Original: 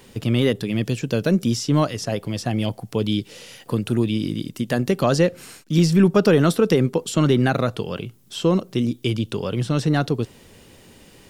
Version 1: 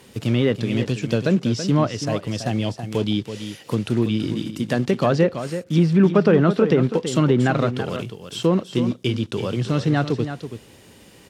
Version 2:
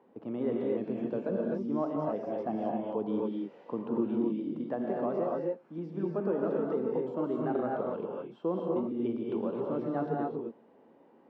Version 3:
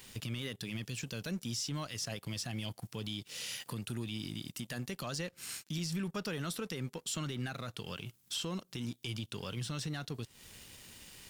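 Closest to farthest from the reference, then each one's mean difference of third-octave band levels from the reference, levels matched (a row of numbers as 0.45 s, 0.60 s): 1, 3, 2; 4.0 dB, 8.0 dB, 12.0 dB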